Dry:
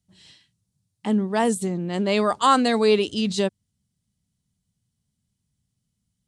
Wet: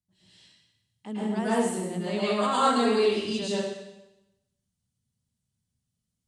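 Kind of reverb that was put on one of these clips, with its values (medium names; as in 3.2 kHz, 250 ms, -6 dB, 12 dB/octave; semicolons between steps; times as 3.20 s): plate-style reverb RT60 0.94 s, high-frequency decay 1×, pre-delay 95 ms, DRR -9.5 dB; trim -14 dB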